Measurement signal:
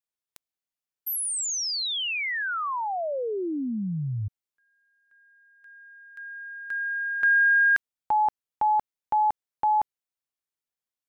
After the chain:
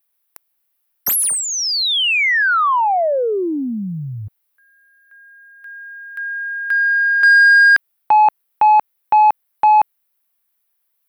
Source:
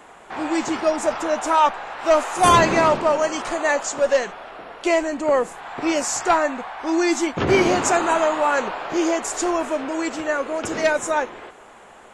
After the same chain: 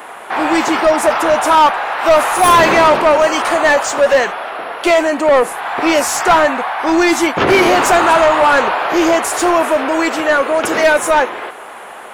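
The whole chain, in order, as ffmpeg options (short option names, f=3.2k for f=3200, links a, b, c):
-filter_complex "[0:a]aexciter=amount=14:drive=1.3:freq=10k,asplit=2[a][b];[b]highpass=f=720:p=1,volume=22dB,asoftclip=type=tanh:threshold=-1dB[c];[a][c]amix=inputs=2:normalize=0,lowpass=f=2.8k:p=1,volume=-6dB"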